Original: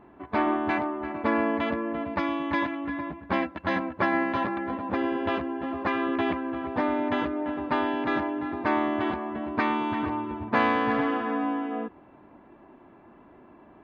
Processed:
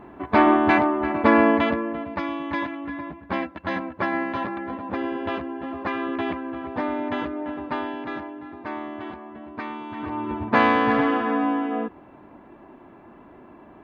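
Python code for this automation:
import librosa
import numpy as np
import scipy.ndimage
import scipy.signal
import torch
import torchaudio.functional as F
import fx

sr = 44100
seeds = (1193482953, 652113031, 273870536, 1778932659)

y = fx.gain(x, sr, db=fx.line((1.5, 8.5), (2.05, -0.5), (7.55, -0.5), (8.39, -7.5), (9.89, -7.5), (10.3, 5.0)))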